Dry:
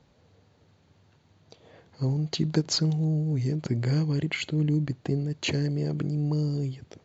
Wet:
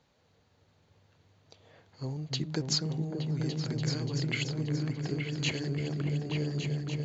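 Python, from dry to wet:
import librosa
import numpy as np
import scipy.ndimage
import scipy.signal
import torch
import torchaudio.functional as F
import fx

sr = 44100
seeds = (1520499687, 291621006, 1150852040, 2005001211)

y = fx.low_shelf(x, sr, hz=470.0, db=-8.5)
y = fx.echo_opening(y, sr, ms=290, hz=200, octaves=2, feedback_pct=70, wet_db=0)
y = y * librosa.db_to_amplitude(-2.5)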